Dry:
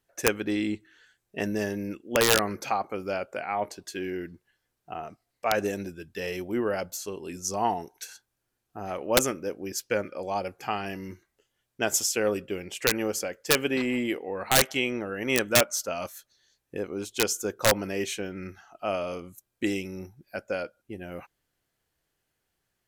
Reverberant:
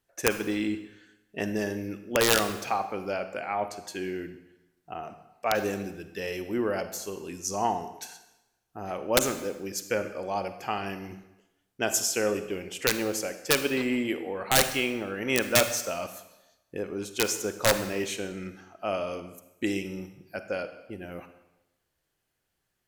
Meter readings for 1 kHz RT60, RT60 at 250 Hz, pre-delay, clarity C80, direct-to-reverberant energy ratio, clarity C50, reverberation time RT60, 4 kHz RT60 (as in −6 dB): 0.95 s, 0.95 s, 35 ms, 12.5 dB, 9.5 dB, 10.5 dB, 0.95 s, 0.85 s